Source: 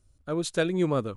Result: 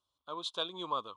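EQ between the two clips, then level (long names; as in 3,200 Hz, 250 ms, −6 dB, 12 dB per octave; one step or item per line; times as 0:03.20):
pair of resonant band-passes 1,900 Hz, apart 1.7 octaves
+6.0 dB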